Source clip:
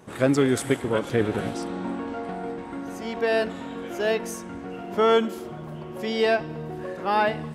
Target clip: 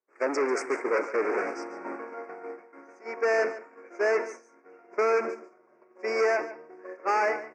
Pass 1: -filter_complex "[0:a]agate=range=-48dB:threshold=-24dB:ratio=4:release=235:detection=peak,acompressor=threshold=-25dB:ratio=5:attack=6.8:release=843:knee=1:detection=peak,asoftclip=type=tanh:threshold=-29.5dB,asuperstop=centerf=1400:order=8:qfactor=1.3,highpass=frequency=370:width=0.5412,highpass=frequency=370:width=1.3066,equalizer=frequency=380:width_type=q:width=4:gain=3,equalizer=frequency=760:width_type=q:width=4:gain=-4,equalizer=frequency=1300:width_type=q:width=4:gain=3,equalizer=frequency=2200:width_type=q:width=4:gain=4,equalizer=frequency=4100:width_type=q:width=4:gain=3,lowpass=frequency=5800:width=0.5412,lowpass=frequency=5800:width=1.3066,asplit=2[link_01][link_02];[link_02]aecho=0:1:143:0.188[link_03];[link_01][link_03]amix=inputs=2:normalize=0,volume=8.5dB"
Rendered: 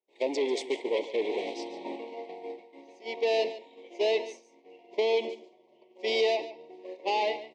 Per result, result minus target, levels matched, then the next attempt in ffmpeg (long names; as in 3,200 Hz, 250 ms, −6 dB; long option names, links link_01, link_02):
4,000 Hz band +14.0 dB; downward compressor: peak gain reduction +5 dB
-filter_complex "[0:a]agate=range=-48dB:threshold=-24dB:ratio=4:release=235:detection=peak,acompressor=threshold=-25dB:ratio=5:attack=6.8:release=843:knee=1:detection=peak,asoftclip=type=tanh:threshold=-29.5dB,asuperstop=centerf=3500:order=8:qfactor=1.3,highpass=frequency=370:width=0.5412,highpass=frequency=370:width=1.3066,equalizer=frequency=380:width_type=q:width=4:gain=3,equalizer=frequency=760:width_type=q:width=4:gain=-4,equalizer=frequency=1300:width_type=q:width=4:gain=3,equalizer=frequency=2200:width_type=q:width=4:gain=4,equalizer=frequency=4100:width_type=q:width=4:gain=3,lowpass=frequency=5800:width=0.5412,lowpass=frequency=5800:width=1.3066,asplit=2[link_01][link_02];[link_02]aecho=0:1:143:0.188[link_03];[link_01][link_03]amix=inputs=2:normalize=0,volume=8.5dB"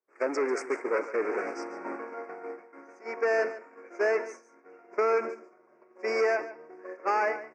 downward compressor: peak gain reduction +5 dB
-filter_complex "[0:a]agate=range=-48dB:threshold=-24dB:ratio=4:release=235:detection=peak,acompressor=threshold=-18.5dB:ratio=5:attack=6.8:release=843:knee=1:detection=peak,asoftclip=type=tanh:threshold=-29.5dB,asuperstop=centerf=3500:order=8:qfactor=1.3,highpass=frequency=370:width=0.5412,highpass=frequency=370:width=1.3066,equalizer=frequency=380:width_type=q:width=4:gain=3,equalizer=frequency=760:width_type=q:width=4:gain=-4,equalizer=frequency=1300:width_type=q:width=4:gain=3,equalizer=frequency=2200:width_type=q:width=4:gain=4,equalizer=frequency=4100:width_type=q:width=4:gain=3,lowpass=frequency=5800:width=0.5412,lowpass=frequency=5800:width=1.3066,asplit=2[link_01][link_02];[link_02]aecho=0:1:143:0.188[link_03];[link_01][link_03]amix=inputs=2:normalize=0,volume=8.5dB"